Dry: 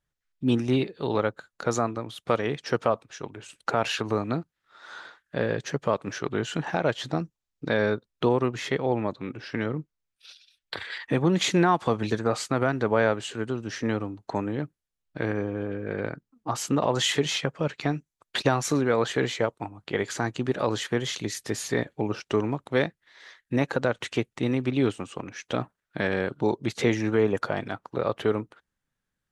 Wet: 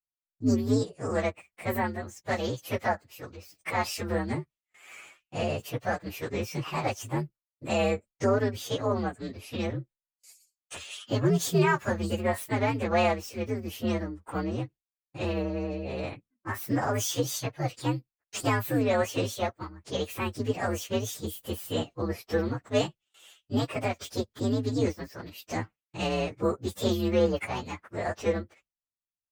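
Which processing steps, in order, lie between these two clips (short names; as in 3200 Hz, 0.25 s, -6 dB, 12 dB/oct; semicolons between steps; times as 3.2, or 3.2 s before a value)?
inharmonic rescaling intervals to 126%; gate with hold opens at -51 dBFS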